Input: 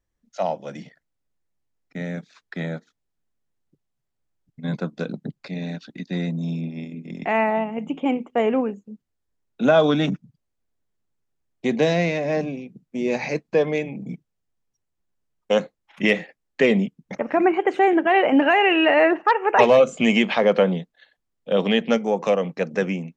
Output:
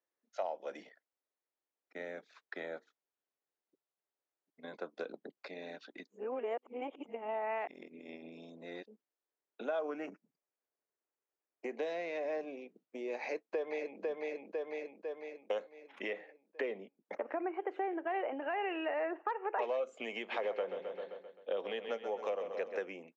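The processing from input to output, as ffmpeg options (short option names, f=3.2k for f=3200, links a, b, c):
-filter_complex "[0:a]asettb=1/sr,asplit=3[a][b][c];[a]atrim=end=9.794[d];[b]atrim=start=9.79:end=11.77,asetpts=PTS-STARTPTS,afade=t=in:d=0.004:c=qsin,afade=t=out:st=1.976:d=0.004:c=qsin,asuperstop=centerf=3600:order=4:qfactor=2.1[e];[c]atrim=start=11.766[f];[d][e]acrossfade=d=0.004:c1=hsin:c2=qsin[g];[g][f]acrossfade=d=0.004:c1=qsin:c2=hsin,asplit=2[h][i];[i]afade=t=in:st=13.2:d=0.01,afade=t=out:st=14.01:d=0.01,aecho=0:1:500|1000|1500|2000|2500|3000:0.630957|0.315479|0.157739|0.0788697|0.0394348|0.0197174[j];[h][j]amix=inputs=2:normalize=0,asettb=1/sr,asplit=3[k][l][m];[k]atrim=end=16.084[n];[l]atrim=start=16.08:end=19.62,asetpts=PTS-STARTPTS,afade=t=in:d=0.004:c=qsin,afade=t=out:st=3.536:d=0.004:c=qsin,highshelf=f=3.8k:g=-11.5[o];[m]atrim=start=19.616[p];[n][o]acrossfade=d=0.004:c1=hsin:c2=qsin[q];[q][p]acrossfade=d=0.004:c1=qsin:c2=hsin,asplit=3[r][s][t];[r]afade=t=out:st=20.31:d=0.02[u];[s]aecho=1:1:131|262|393|524|655|786:0.299|0.158|0.0839|0.0444|0.0236|0.0125,afade=t=in:st=20.31:d=0.02,afade=t=out:st=22.8:d=0.02[v];[t]afade=t=in:st=22.8:d=0.02[w];[u][v][w]amix=inputs=3:normalize=0,asplit=3[x][y][z];[x]atrim=end=6.072[aa];[y]atrim=start=6.068:end=8.862,asetpts=PTS-STARTPTS,areverse[ab];[z]atrim=start=8.858[ac];[aa][ab]acrossfade=d=0.004:c1=hsin:c2=hsin[ad];[ad][ac]acrossfade=d=0.004:c1=hsin:c2=hsin,lowpass=f=2.2k:p=1,acompressor=threshold=-29dB:ratio=5,highpass=f=360:w=0.5412,highpass=f=360:w=1.3066,volume=-4.5dB"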